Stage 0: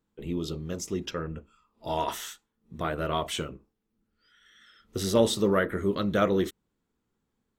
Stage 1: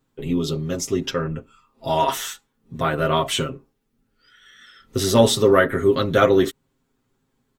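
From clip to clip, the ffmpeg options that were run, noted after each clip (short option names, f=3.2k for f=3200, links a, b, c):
-af "aecho=1:1:7.5:0.79,volume=7dB"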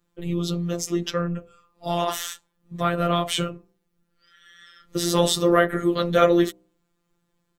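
-af "afftfilt=real='hypot(re,im)*cos(PI*b)':imag='0':win_size=1024:overlap=0.75,bandreject=f=63.51:t=h:w=4,bandreject=f=127.02:t=h:w=4,bandreject=f=190.53:t=h:w=4,bandreject=f=254.04:t=h:w=4,bandreject=f=317.55:t=h:w=4,bandreject=f=381.06:t=h:w=4,bandreject=f=444.57:t=h:w=4,bandreject=f=508.08:t=h:w=4,bandreject=f=571.59:t=h:w=4,bandreject=f=635.1:t=h:w=4,bandreject=f=698.61:t=h:w=4,bandreject=f=762.12:t=h:w=4,bandreject=f=825.63:t=h:w=4,bandreject=f=889.14:t=h:w=4,bandreject=f=952.65:t=h:w=4,bandreject=f=1.01616k:t=h:w=4,volume=1.5dB"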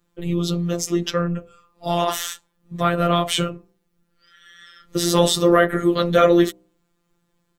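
-af "apsyclip=5.5dB,volume=-2dB"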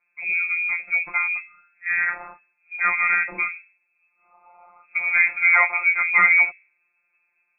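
-af "lowpass=f=2.2k:t=q:w=0.5098,lowpass=f=2.2k:t=q:w=0.6013,lowpass=f=2.2k:t=q:w=0.9,lowpass=f=2.2k:t=q:w=2.563,afreqshift=-2600,volume=-1.5dB"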